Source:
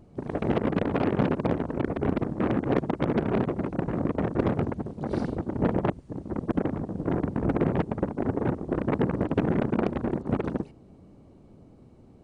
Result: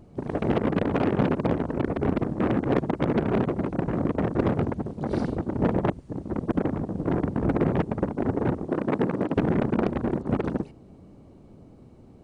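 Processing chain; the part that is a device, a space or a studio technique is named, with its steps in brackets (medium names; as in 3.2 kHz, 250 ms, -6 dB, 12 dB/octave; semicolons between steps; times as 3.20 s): 8.67–9.37 s: high-pass 160 Hz 12 dB/octave; parallel distortion (in parallel at -9 dB: hard clipper -26 dBFS, distortion -7 dB)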